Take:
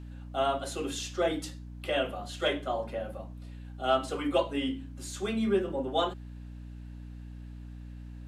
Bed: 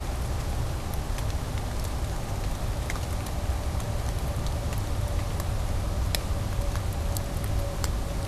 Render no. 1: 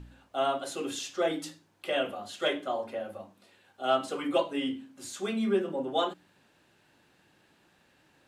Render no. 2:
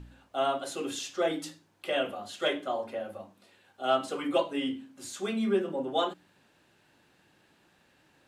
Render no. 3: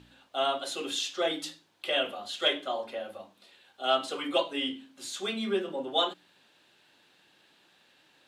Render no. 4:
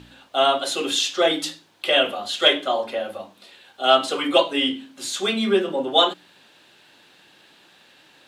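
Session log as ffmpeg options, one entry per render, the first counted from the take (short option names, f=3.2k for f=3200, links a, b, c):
-af "bandreject=f=60:t=h:w=4,bandreject=f=120:t=h:w=4,bandreject=f=180:t=h:w=4,bandreject=f=240:t=h:w=4,bandreject=f=300:t=h:w=4"
-af anull
-af "highpass=f=320:p=1,equalizer=f=3.6k:t=o:w=0.89:g=8.5"
-af "volume=10dB"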